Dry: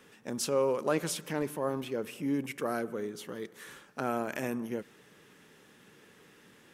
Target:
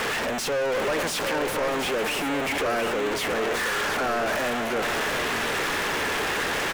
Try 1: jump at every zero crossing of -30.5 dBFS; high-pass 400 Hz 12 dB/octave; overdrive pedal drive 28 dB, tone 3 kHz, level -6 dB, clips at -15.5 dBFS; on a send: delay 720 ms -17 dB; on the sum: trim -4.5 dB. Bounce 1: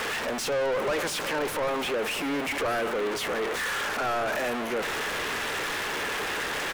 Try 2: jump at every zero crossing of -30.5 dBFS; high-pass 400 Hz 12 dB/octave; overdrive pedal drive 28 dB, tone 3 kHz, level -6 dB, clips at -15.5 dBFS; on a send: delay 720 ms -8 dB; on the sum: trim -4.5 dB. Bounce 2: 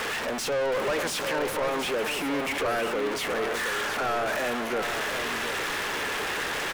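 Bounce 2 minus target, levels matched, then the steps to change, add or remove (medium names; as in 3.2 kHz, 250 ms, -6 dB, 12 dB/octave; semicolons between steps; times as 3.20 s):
jump at every zero crossing: distortion -6 dB
change: jump at every zero crossing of -18.5 dBFS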